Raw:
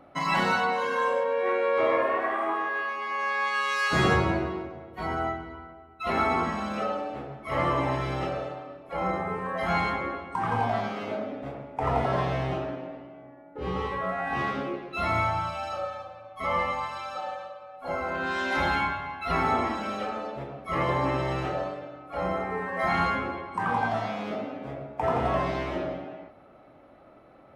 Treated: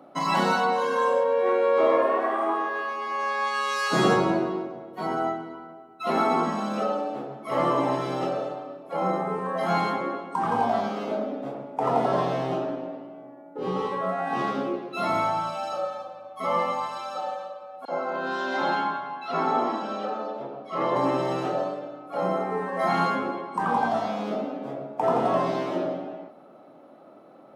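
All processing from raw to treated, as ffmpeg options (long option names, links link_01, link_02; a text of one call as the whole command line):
ffmpeg -i in.wav -filter_complex "[0:a]asettb=1/sr,asplit=3[link_01][link_02][link_03];[link_01]atrim=end=17.854[link_04];[link_02]atrim=start=17.85:end=20.96,asetpts=PTS-STARTPTS,afade=type=in:duration=0.004:curve=qsin,afade=type=out:start_time=3.106:duration=0.004:curve=qsin,lowpass=4600,lowshelf=frequency=170:gain=-11,acrossover=split=2200[link_05][link_06];[link_05]adelay=30[link_07];[link_07][link_06]amix=inputs=2:normalize=0,atrim=end_sample=137151[link_08];[link_03]atrim=start=20.956[link_09];[link_04][link_08]acrossfade=duration=0.004:curve1=hsin:curve2=qsin[link_10];[link_10][link_09]acrossfade=duration=0.004:curve1=qsin:curve2=hsin,highpass=frequency=170:width=0.5412,highpass=frequency=170:width=1.3066,equalizer=frequency=2100:width_type=o:width=1.1:gain=-9.5,volume=4.5dB" out.wav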